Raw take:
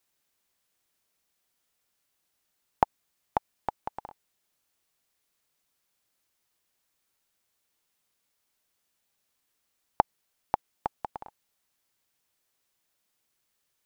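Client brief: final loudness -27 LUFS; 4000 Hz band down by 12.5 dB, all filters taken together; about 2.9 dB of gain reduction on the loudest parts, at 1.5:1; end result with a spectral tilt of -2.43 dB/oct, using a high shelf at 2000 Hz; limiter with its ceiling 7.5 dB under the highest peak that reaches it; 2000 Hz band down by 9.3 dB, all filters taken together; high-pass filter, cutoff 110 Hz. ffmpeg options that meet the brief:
-af "highpass=110,highshelf=f=2k:g=-7,equalizer=f=2k:t=o:g=-8,equalizer=f=4k:t=o:g=-6.5,acompressor=threshold=-28dB:ratio=1.5,volume=16.5dB,alimiter=limit=-0.5dB:level=0:latency=1"

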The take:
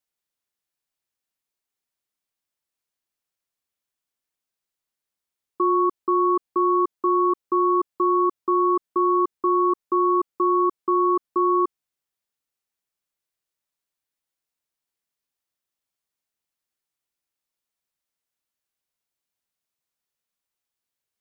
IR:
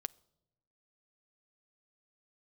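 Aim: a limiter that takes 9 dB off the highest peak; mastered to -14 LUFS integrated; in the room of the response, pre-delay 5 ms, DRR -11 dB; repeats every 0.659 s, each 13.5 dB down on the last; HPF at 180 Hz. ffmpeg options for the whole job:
-filter_complex "[0:a]highpass=180,alimiter=limit=-22.5dB:level=0:latency=1,aecho=1:1:659|1318:0.211|0.0444,asplit=2[a][b];[1:a]atrim=start_sample=2205,adelay=5[c];[b][c]afir=irnorm=-1:irlink=0,volume=13dB[d];[a][d]amix=inputs=2:normalize=0,volume=6dB"

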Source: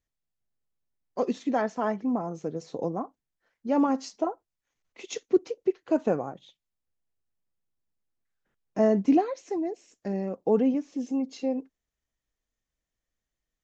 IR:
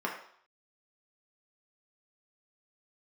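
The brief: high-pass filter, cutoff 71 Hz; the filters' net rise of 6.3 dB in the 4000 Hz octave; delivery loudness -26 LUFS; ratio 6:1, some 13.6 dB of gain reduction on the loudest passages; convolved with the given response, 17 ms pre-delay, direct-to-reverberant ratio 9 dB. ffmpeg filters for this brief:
-filter_complex "[0:a]highpass=71,equalizer=f=4k:t=o:g=8,acompressor=threshold=-32dB:ratio=6,asplit=2[a][b];[1:a]atrim=start_sample=2205,adelay=17[c];[b][c]afir=irnorm=-1:irlink=0,volume=-16.5dB[d];[a][d]amix=inputs=2:normalize=0,volume=11.5dB"

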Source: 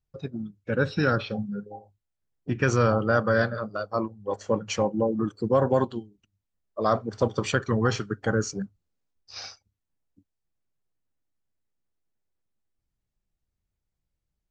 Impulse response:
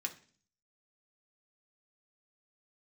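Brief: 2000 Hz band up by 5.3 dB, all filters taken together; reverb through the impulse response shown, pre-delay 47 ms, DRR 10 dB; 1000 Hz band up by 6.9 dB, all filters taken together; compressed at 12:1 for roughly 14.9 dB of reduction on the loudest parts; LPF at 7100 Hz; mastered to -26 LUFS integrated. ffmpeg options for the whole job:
-filter_complex "[0:a]lowpass=7.1k,equalizer=f=1k:t=o:g=8,equalizer=f=2k:t=o:g=3.5,acompressor=threshold=-29dB:ratio=12,asplit=2[a][b];[1:a]atrim=start_sample=2205,adelay=47[c];[b][c]afir=irnorm=-1:irlink=0,volume=-10.5dB[d];[a][d]amix=inputs=2:normalize=0,volume=9.5dB"

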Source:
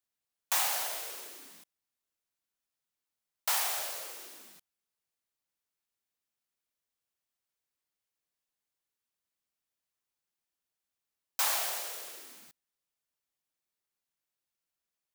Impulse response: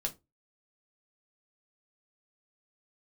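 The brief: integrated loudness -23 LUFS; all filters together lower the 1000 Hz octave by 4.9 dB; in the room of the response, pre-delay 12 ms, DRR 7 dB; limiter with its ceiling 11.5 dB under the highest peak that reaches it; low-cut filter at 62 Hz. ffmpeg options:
-filter_complex "[0:a]highpass=62,equalizer=f=1k:t=o:g=-6.5,alimiter=level_in=3.5dB:limit=-24dB:level=0:latency=1,volume=-3.5dB,asplit=2[a][b];[1:a]atrim=start_sample=2205,adelay=12[c];[b][c]afir=irnorm=-1:irlink=0,volume=-8.5dB[d];[a][d]amix=inputs=2:normalize=0,volume=13.5dB"

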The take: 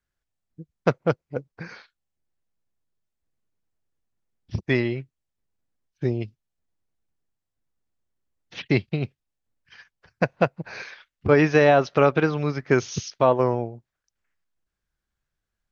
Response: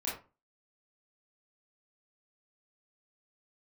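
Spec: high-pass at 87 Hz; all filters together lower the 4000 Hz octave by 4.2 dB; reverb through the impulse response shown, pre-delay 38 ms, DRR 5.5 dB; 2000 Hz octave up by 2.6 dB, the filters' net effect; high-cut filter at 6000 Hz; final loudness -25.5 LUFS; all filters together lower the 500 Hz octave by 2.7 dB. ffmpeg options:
-filter_complex "[0:a]highpass=87,lowpass=6k,equalizer=f=500:t=o:g=-3.5,equalizer=f=2k:t=o:g=5,equalizer=f=4k:t=o:g=-7,asplit=2[a][b];[1:a]atrim=start_sample=2205,adelay=38[c];[b][c]afir=irnorm=-1:irlink=0,volume=-9dB[d];[a][d]amix=inputs=2:normalize=0,volume=-2dB"

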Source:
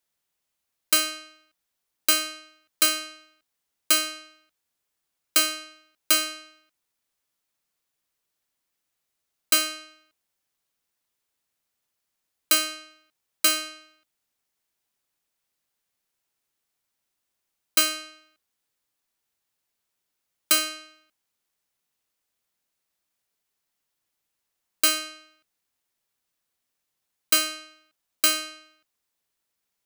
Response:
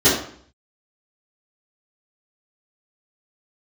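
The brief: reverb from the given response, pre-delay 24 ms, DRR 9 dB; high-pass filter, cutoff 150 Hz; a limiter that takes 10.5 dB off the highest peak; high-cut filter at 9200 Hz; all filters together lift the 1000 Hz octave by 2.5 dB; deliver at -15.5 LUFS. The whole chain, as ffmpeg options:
-filter_complex "[0:a]highpass=150,lowpass=9.2k,equalizer=f=1k:t=o:g=3.5,alimiter=limit=-20.5dB:level=0:latency=1,asplit=2[a][b];[1:a]atrim=start_sample=2205,adelay=24[c];[b][c]afir=irnorm=-1:irlink=0,volume=-31dB[d];[a][d]amix=inputs=2:normalize=0,volume=16dB"

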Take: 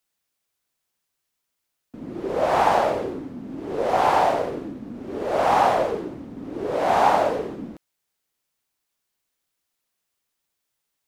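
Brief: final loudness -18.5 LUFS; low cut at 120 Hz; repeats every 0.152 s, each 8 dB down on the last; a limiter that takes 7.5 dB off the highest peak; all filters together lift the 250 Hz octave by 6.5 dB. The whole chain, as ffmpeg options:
-af "highpass=120,equalizer=f=250:t=o:g=8.5,alimiter=limit=-11.5dB:level=0:latency=1,aecho=1:1:152|304|456|608|760:0.398|0.159|0.0637|0.0255|0.0102,volume=4dB"

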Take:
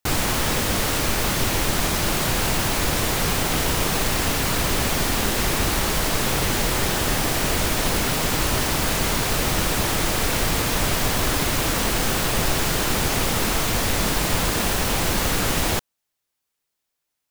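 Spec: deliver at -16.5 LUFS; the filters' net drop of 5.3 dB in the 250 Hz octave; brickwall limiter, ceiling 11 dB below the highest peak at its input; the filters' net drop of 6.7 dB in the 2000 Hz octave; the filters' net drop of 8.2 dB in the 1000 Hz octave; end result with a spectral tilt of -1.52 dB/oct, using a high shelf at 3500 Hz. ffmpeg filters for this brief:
-af "equalizer=f=250:t=o:g=-7,equalizer=f=1k:t=o:g=-9,equalizer=f=2k:t=o:g=-8,highshelf=f=3.5k:g=6.5,volume=7.5dB,alimiter=limit=-9dB:level=0:latency=1"

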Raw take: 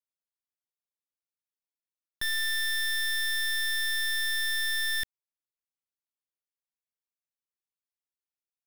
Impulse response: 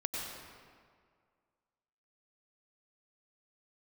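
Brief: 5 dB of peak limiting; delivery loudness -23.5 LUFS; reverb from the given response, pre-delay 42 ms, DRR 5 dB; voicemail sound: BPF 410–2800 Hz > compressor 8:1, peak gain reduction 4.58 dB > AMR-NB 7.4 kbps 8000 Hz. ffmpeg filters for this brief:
-filter_complex "[0:a]alimiter=level_in=9.5dB:limit=-24dB:level=0:latency=1,volume=-9.5dB,asplit=2[a][b];[1:a]atrim=start_sample=2205,adelay=42[c];[b][c]afir=irnorm=-1:irlink=0,volume=-8.5dB[d];[a][d]amix=inputs=2:normalize=0,highpass=410,lowpass=2.8k,acompressor=threshold=-37dB:ratio=8,volume=15.5dB" -ar 8000 -c:a libopencore_amrnb -b:a 7400

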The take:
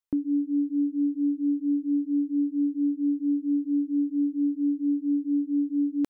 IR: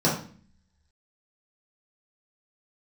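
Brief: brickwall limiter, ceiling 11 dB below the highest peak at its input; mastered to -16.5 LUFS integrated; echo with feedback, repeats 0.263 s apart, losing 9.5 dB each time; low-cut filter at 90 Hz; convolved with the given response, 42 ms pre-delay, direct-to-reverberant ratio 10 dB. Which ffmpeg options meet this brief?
-filter_complex "[0:a]highpass=90,alimiter=level_in=6dB:limit=-24dB:level=0:latency=1,volume=-6dB,aecho=1:1:263|526|789|1052:0.335|0.111|0.0365|0.012,asplit=2[a][b];[1:a]atrim=start_sample=2205,adelay=42[c];[b][c]afir=irnorm=-1:irlink=0,volume=-25dB[d];[a][d]amix=inputs=2:normalize=0,volume=14dB"

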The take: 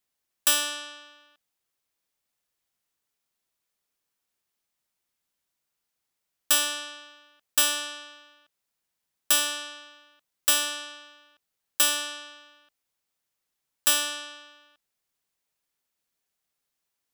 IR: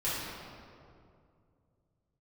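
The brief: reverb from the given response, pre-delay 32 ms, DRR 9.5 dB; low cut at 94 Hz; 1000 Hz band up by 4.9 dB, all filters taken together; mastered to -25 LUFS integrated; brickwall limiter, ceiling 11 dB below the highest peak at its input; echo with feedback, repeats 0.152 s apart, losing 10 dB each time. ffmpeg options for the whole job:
-filter_complex "[0:a]highpass=94,equalizer=f=1k:t=o:g=6,alimiter=limit=-19dB:level=0:latency=1,aecho=1:1:152|304|456|608:0.316|0.101|0.0324|0.0104,asplit=2[a][b];[1:a]atrim=start_sample=2205,adelay=32[c];[b][c]afir=irnorm=-1:irlink=0,volume=-17.5dB[d];[a][d]amix=inputs=2:normalize=0,volume=5dB"

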